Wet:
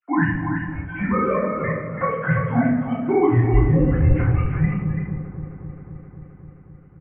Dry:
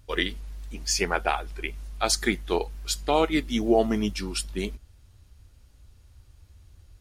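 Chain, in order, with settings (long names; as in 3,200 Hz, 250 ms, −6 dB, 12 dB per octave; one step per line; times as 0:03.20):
three sine waves on the formant tracks
downward compressor, threshold −26 dBFS, peak gain reduction 13.5 dB
single-tap delay 335 ms −6.5 dB
single-sideband voice off tune −200 Hz 240–2,200 Hz
delay with a low-pass on its return 263 ms, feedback 76%, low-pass 1,300 Hz, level −14 dB
convolution reverb RT60 0.70 s, pre-delay 3 ms, DRR −10.5 dB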